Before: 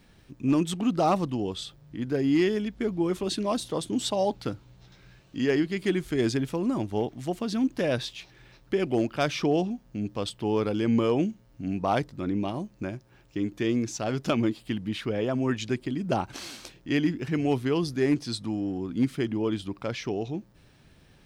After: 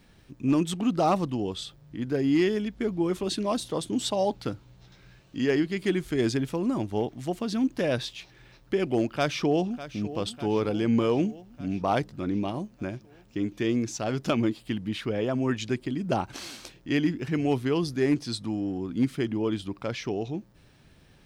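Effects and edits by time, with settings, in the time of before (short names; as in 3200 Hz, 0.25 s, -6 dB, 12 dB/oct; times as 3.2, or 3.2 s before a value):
9.07–10.13 echo throw 0.6 s, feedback 65%, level -14 dB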